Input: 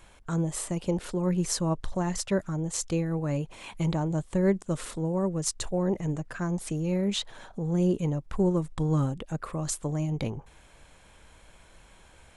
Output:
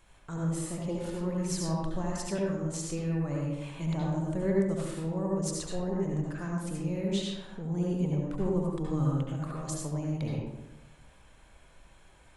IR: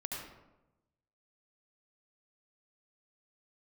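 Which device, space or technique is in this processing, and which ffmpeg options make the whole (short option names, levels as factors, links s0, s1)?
bathroom: -filter_complex "[1:a]atrim=start_sample=2205[s0];[0:a][s0]afir=irnorm=-1:irlink=0,volume=0.596"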